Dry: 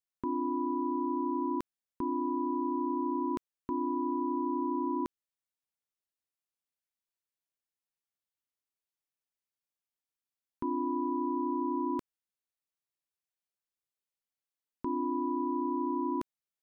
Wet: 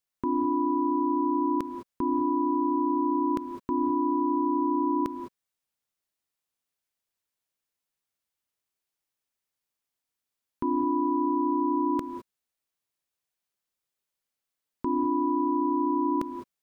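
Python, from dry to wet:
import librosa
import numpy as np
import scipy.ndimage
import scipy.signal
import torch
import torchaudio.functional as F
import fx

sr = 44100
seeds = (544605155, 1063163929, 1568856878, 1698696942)

y = fx.rev_gated(x, sr, seeds[0], gate_ms=230, shape='rising', drr_db=8.0)
y = F.gain(torch.from_numpy(y), 5.5).numpy()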